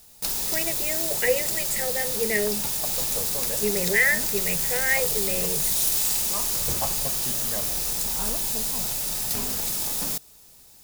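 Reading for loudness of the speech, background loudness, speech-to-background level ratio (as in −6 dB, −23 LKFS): −27.0 LKFS, −23.5 LKFS, −3.5 dB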